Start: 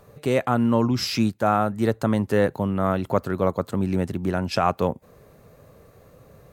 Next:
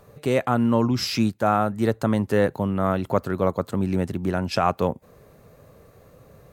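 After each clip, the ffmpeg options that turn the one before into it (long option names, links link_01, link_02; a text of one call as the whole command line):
ffmpeg -i in.wav -af anull out.wav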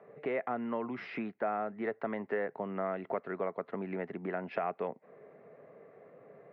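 ffmpeg -i in.wav -filter_complex "[0:a]highpass=frequency=170:width=0.5412,highpass=frequency=170:width=1.3066,equalizer=frequency=420:width_type=q:width=4:gain=8,equalizer=frequency=680:width_type=q:width=4:gain=8,equalizer=frequency=2000:width_type=q:width=4:gain=8,lowpass=frequency=2300:width=0.5412,lowpass=frequency=2300:width=1.3066,acrossover=split=710|1800[link_01][link_02][link_03];[link_01]acompressor=threshold=-30dB:ratio=4[link_04];[link_02]acompressor=threshold=-32dB:ratio=4[link_05];[link_03]acompressor=threshold=-39dB:ratio=4[link_06];[link_04][link_05][link_06]amix=inputs=3:normalize=0,volume=-7dB" out.wav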